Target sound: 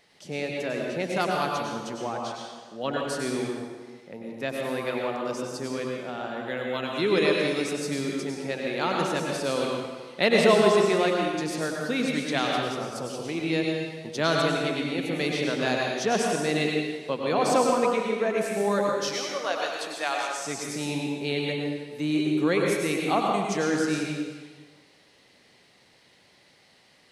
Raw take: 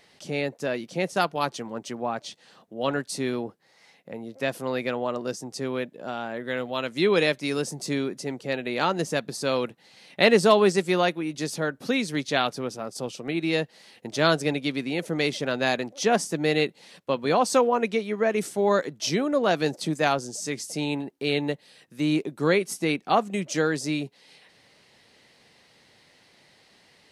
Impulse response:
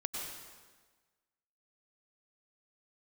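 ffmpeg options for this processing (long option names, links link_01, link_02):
-filter_complex "[0:a]asettb=1/sr,asplit=3[link_01][link_02][link_03];[link_01]atrim=end=19.004[link_04];[link_02]atrim=start=19:end=20.37,asetpts=PTS-STARTPTS,afade=type=in:duration=0.004:curve=qsin,afade=type=out:start_time=1.366:duration=0.004:curve=qsin,highpass=740[link_05];[link_03]atrim=start=20.366[link_06];[link_04][link_05]acrossfade=duration=0.004:curve1=hsin:curve2=qsin[link_07];[link_07][link_06]acrossfade=duration=0.004:curve1=qsin:curve2=hsin[link_08];[1:a]atrim=start_sample=2205[link_09];[link_08][link_09]afir=irnorm=-1:irlink=0,volume=-2.5dB"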